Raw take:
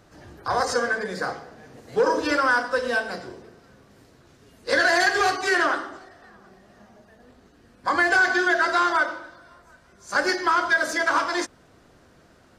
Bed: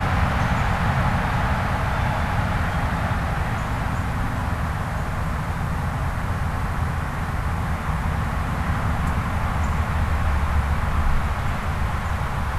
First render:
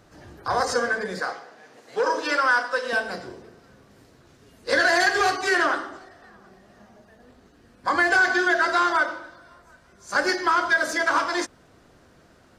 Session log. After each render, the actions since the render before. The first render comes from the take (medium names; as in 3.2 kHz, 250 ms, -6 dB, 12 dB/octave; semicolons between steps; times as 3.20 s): 1.20–2.93 s: frequency weighting A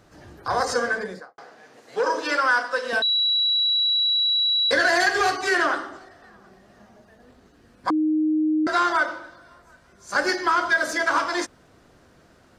0.96–1.38 s: studio fade out; 3.02–4.71 s: bleep 3.91 kHz -18 dBFS; 7.90–8.67 s: bleep 310 Hz -18 dBFS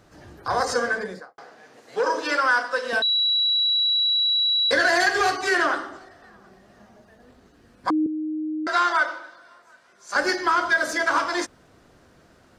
8.06–10.16 s: frequency weighting A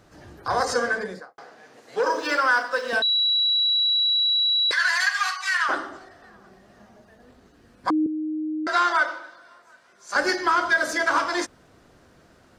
2.00–2.94 s: median filter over 3 samples; 4.71–5.69 s: Chebyshev high-pass 1 kHz, order 4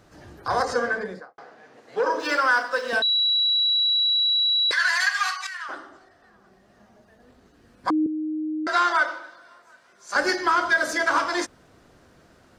0.62–2.20 s: treble shelf 4.5 kHz -10.5 dB; 5.47–8.02 s: fade in, from -13 dB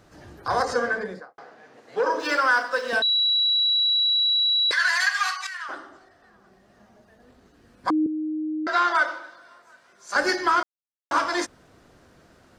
8.29–8.95 s: distance through air 75 m; 10.63–11.11 s: mute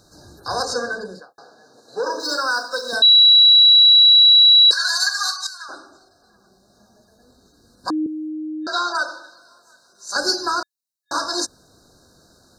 FFT band-reject 1.7–3.7 kHz; resonant high shelf 2 kHz +9 dB, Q 1.5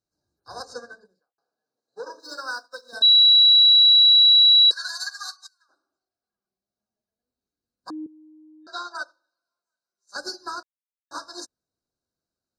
peak limiter -10.5 dBFS, peak gain reduction 4 dB; upward expansion 2.5:1, over -37 dBFS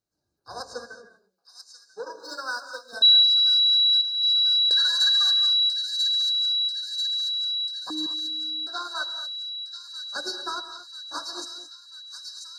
on a send: feedback echo behind a high-pass 990 ms, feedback 68%, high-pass 3.7 kHz, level -3 dB; on the sum: gated-style reverb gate 250 ms rising, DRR 9 dB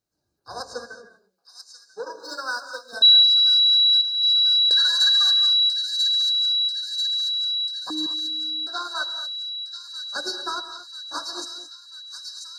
trim +2.5 dB